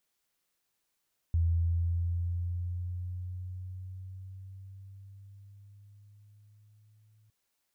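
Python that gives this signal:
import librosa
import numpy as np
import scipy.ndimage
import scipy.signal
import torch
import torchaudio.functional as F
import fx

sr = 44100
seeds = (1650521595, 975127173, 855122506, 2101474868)

y = fx.riser_tone(sr, length_s=5.96, level_db=-23, wave='sine', hz=83.3, rise_st=4.5, swell_db=-38.0)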